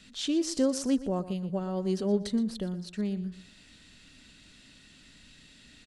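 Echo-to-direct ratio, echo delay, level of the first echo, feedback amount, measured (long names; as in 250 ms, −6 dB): −14.5 dB, 120 ms, −15.0 dB, 27%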